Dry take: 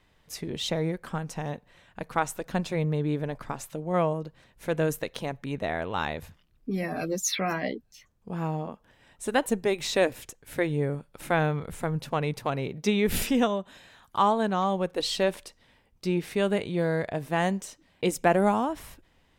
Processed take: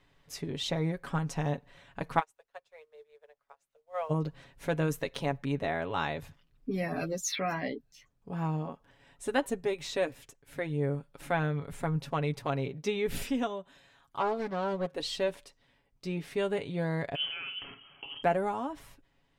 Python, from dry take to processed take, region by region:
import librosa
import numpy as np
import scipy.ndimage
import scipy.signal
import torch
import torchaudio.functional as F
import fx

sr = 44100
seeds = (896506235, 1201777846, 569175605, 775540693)

y = fx.cheby1_highpass(x, sr, hz=440.0, order=6, at=(2.19, 4.09), fade=0.02)
y = fx.dmg_noise_colour(y, sr, seeds[0], colour='pink', level_db=-58.0, at=(2.19, 4.09), fade=0.02)
y = fx.upward_expand(y, sr, threshold_db=-43.0, expansion=2.5, at=(2.19, 4.09), fade=0.02)
y = fx.chain(y, sr, fx.highpass(hz=100.0, slope=24),
    fx.doppler_dist(depth_ms=0.42), at=(14.18, 14.93))
y = fx.chain(y, sr, fx.over_compress(threshold_db=-35.0, ratio=-1.0),
    fx.room_flutter(wall_m=8.5, rt60_s=0.32),
    fx.freq_invert(carrier_hz=3200), at=(17.15, 18.23))
y = fx.high_shelf(y, sr, hz=8900.0, db=-7.0)
y = y + 0.52 * np.pad(y, (int(7.2 * sr / 1000.0), 0))[:len(y)]
y = fx.rider(y, sr, range_db=10, speed_s=0.5)
y = y * librosa.db_to_amplitude(-5.0)